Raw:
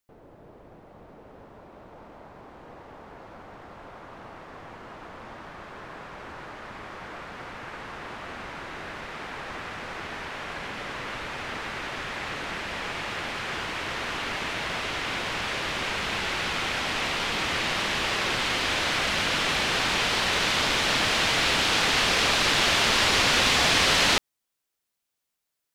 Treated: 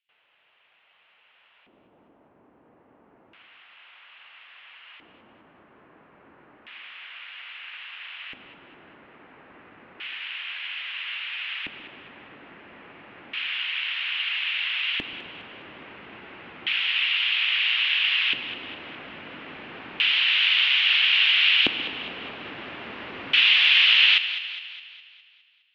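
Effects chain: EQ curve 110 Hz 0 dB, 310 Hz -7 dB, 2800 Hz +13 dB, 9600 Hz -25 dB, 15000 Hz +5 dB; LFO band-pass square 0.3 Hz 290–3100 Hz; on a send: split-band echo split 390 Hz, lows 0.13 s, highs 0.206 s, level -12 dB; on the sum: gain -1 dB

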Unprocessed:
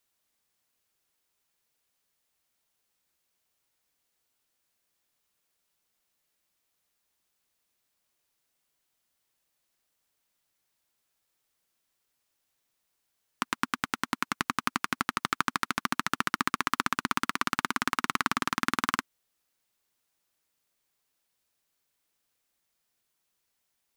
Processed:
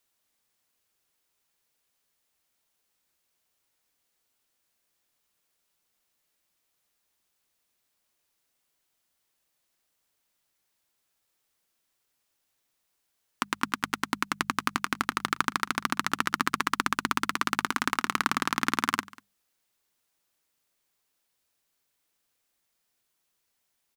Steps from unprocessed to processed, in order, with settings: notches 50/100/150/200 Hz; echo 0.193 s -22 dB; gain +1.5 dB

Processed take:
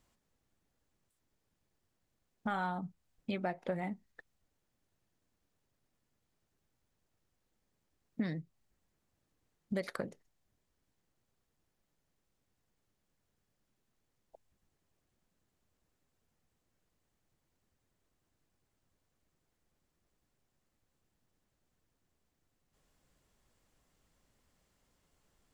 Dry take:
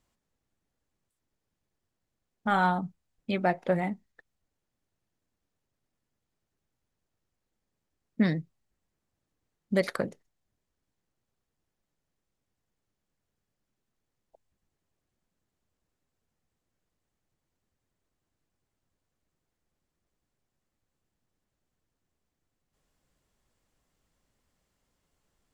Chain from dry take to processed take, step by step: compressor 3:1, threshold -39 dBFS, peak gain reduction 14.5 dB; gain +2 dB

